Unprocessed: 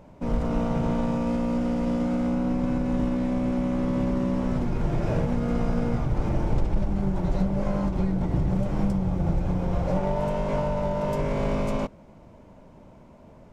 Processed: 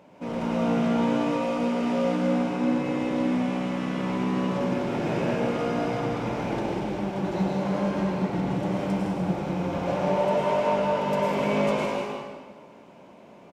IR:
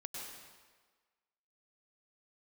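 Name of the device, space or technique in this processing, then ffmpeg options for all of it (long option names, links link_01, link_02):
stadium PA: -filter_complex "[0:a]highpass=210,equalizer=frequency=2800:width_type=o:width=1.1:gain=6,aecho=1:1:160.3|201.2:0.355|0.355[link_01];[1:a]atrim=start_sample=2205[link_02];[link_01][link_02]afir=irnorm=-1:irlink=0,volume=4dB"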